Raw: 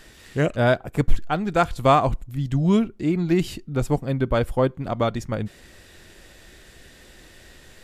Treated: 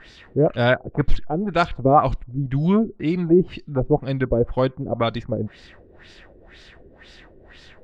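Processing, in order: LFO low-pass sine 2 Hz 390–4900 Hz

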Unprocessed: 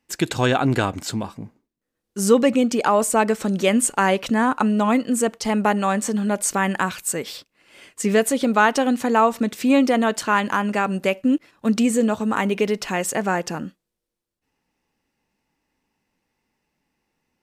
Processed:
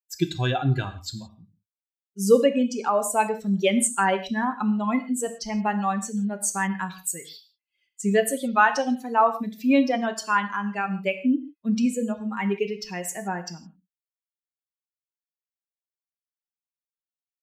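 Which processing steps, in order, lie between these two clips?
expander on every frequency bin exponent 2; on a send: reverberation, pre-delay 3 ms, DRR 7 dB

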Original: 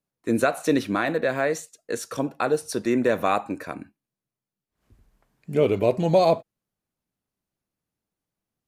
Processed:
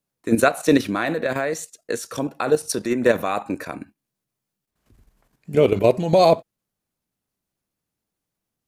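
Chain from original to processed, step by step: treble shelf 4 kHz +3.5 dB; level held to a coarse grid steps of 10 dB; trim +7 dB

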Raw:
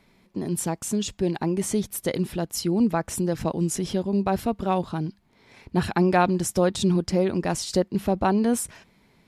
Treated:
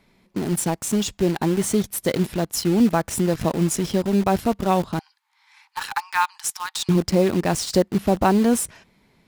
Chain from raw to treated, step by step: 4.99–6.89 s: Chebyshev high-pass 790 Hz, order 10; in parallel at -4.5 dB: bit crusher 5-bit

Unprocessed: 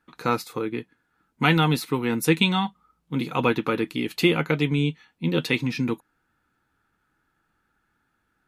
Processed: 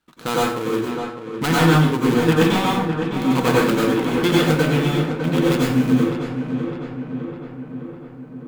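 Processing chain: dead-time distortion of 0.23 ms; on a send: filtered feedback delay 606 ms, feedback 64%, low-pass 2.8 kHz, level -8 dB; on the sum: plate-style reverb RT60 0.7 s, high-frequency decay 0.6×, pre-delay 80 ms, DRR -5 dB

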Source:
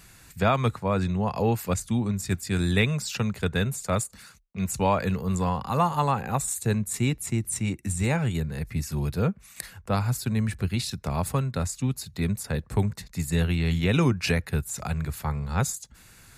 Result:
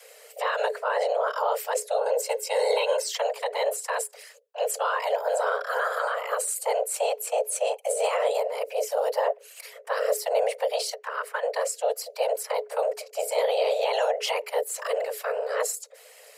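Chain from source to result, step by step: 10.94–11.43 s: three-band isolator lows -12 dB, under 540 Hz, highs -13 dB, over 2.4 kHz; peak limiter -19 dBFS, peak gain reduction 9.5 dB; whisper effect; 1.97–3.06 s: comb 1.8 ms, depth 59%; frequency shift +420 Hz; trim +1.5 dB

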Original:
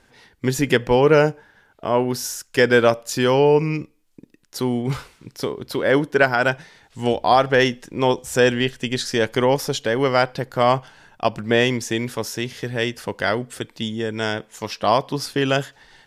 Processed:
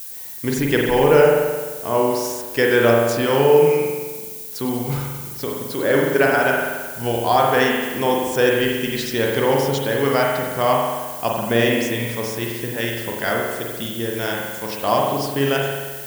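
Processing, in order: spring tank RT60 1.4 s, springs 43 ms, chirp 55 ms, DRR -1.5 dB; added noise violet -31 dBFS; trim -3 dB

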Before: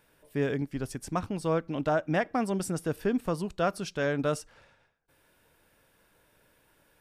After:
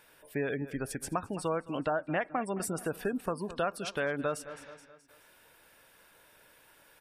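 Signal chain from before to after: spectral gate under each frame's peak -30 dB strong; bass shelf 390 Hz -11.5 dB; on a send: feedback delay 213 ms, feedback 46%, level -19 dB; on the sum: dynamic bell 5.6 kHz, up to -7 dB, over -59 dBFS, Q 1.3; compression 2.5:1, threshold -38 dBFS, peak gain reduction 9 dB; trim +7 dB

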